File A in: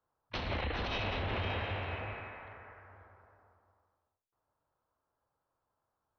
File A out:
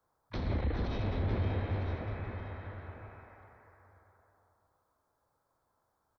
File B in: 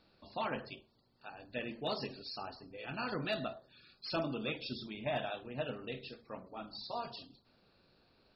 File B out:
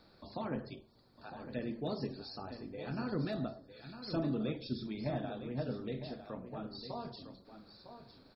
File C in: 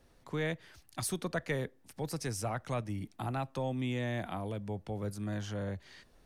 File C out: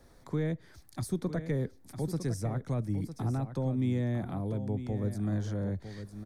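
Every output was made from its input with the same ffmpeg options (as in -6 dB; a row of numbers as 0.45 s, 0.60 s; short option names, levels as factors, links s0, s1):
-filter_complex "[0:a]equalizer=f=2800:w=4.6:g=-12.5,acrossover=split=420[s0][s1];[s1]acompressor=threshold=0.001:ratio=2[s2];[s0][s2]amix=inputs=2:normalize=0,aecho=1:1:955:0.299,volume=2"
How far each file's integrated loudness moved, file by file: +1.0 LU, +0.5 LU, +3.5 LU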